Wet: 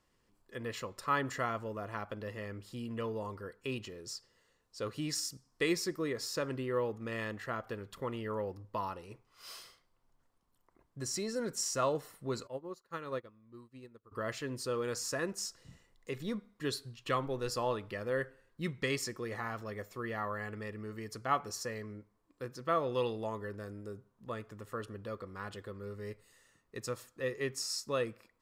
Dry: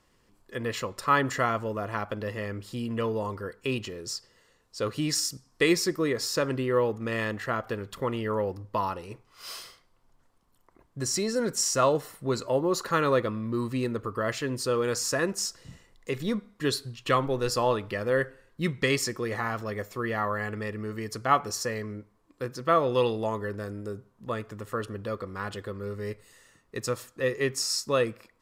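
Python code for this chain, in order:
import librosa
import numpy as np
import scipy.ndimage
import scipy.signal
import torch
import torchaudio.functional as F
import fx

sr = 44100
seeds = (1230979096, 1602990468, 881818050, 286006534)

y = fx.upward_expand(x, sr, threshold_db=-39.0, expansion=2.5, at=(12.46, 14.11), fade=0.02)
y = F.gain(torch.from_numpy(y), -8.5).numpy()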